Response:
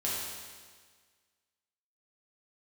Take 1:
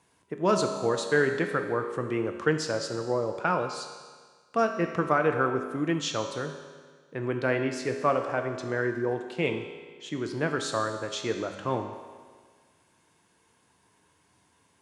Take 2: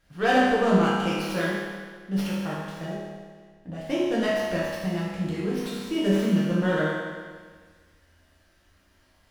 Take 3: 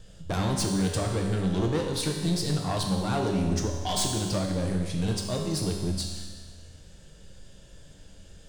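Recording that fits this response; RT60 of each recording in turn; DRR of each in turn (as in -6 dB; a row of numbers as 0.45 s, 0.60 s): 2; 1.6 s, 1.6 s, 1.6 s; 5.0 dB, -7.0 dB, 0.5 dB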